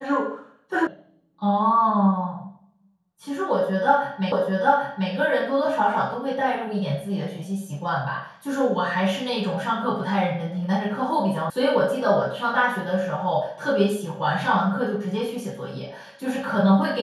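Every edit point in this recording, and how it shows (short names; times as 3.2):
0.87 sound cut off
4.32 repeat of the last 0.79 s
11.5 sound cut off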